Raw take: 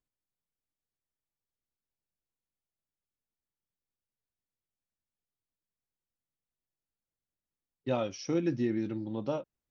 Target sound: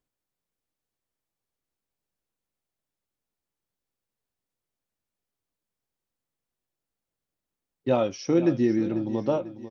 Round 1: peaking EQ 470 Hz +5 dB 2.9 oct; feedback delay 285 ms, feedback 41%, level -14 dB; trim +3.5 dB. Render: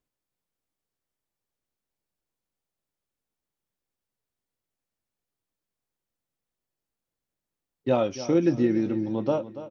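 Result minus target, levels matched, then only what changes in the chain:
echo 210 ms early
change: feedback delay 495 ms, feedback 41%, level -14 dB

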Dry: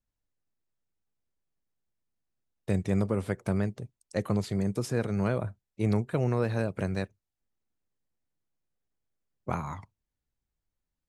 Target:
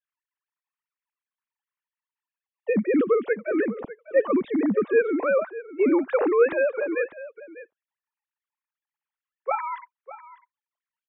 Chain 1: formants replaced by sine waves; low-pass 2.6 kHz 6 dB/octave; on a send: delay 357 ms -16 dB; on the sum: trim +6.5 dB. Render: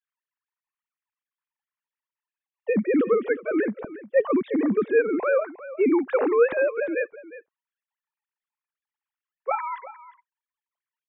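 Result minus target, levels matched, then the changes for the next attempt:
echo 242 ms early
change: delay 599 ms -16 dB

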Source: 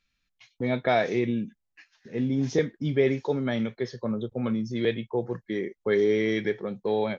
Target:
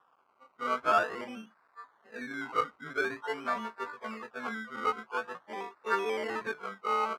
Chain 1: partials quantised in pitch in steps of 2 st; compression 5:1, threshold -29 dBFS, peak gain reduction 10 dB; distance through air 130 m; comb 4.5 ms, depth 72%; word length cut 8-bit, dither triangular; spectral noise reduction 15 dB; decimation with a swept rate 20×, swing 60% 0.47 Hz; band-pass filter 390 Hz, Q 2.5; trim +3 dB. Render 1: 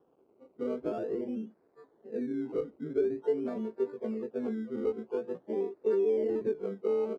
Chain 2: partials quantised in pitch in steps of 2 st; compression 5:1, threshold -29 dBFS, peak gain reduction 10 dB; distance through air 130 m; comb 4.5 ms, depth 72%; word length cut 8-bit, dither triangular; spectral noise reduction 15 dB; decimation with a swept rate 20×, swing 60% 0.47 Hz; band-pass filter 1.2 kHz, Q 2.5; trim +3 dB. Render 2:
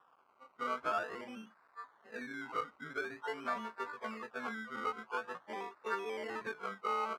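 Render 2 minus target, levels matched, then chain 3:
compression: peak gain reduction +10 dB
partials quantised in pitch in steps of 2 st; distance through air 130 m; comb 4.5 ms, depth 72%; word length cut 8-bit, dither triangular; spectral noise reduction 15 dB; decimation with a swept rate 20×, swing 60% 0.47 Hz; band-pass filter 1.2 kHz, Q 2.5; trim +3 dB

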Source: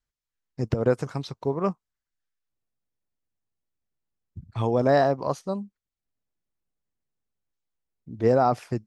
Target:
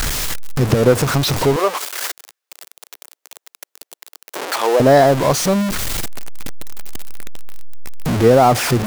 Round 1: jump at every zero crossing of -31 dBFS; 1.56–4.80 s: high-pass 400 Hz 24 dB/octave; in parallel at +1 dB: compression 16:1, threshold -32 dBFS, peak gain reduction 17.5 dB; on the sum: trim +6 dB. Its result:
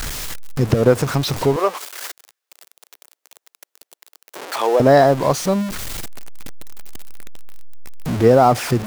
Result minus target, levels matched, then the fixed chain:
jump at every zero crossing: distortion -6 dB
jump at every zero crossing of -23.5 dBFS; 1.56–4.80 s: high-pass 400 Hz 24 dB/octave; in parallel at +1 dB: compression 16:1, threshold -32 dBFS, peak gain reduction 18 dB; on the sum: trim +6 dB

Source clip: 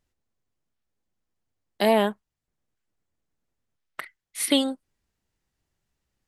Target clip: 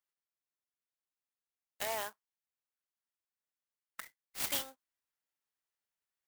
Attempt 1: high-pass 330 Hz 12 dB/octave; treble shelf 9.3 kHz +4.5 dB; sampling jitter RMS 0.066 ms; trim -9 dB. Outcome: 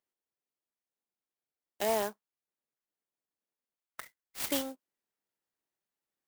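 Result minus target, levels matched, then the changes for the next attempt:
250 Hz band +11.5 dB
change: high-pass 1.1 kHz 12 dB/octave

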